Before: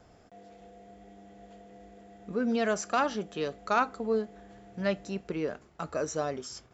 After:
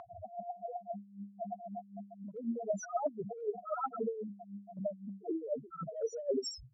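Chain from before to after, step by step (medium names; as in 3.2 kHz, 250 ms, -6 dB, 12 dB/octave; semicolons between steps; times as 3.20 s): reverse echo 69 ms -19.5 dB; reverse; compression, threshold -35 dBFS, peak gain reduction 14 dB; reverse; loudest bins only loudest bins 1; dynamic bell 260 Hz, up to -4 dB, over -58 dBFS, Q 2; wah-wah 3.9 Hz 280–3600 Hz, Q 2; peaking EQ 170 Hz -12 dB 0.37 oct; spectrum-flattening compressor 2:1; trim +18 dB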